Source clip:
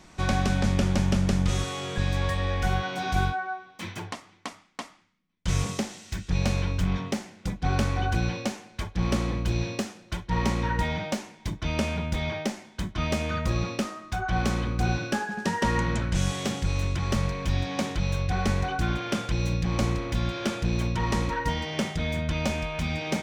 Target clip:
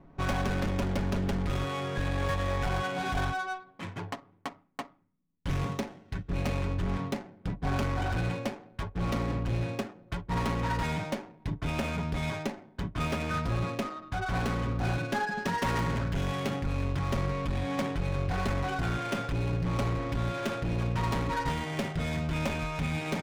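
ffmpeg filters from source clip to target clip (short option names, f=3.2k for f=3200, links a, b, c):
-af "adynamicsmooth=sensitivity=7:basefreq=600,volume=24.5dB,asoftclip=hard,volume=-24.5dB,aecho=1:1:7.2:0.44,volume=-1dB"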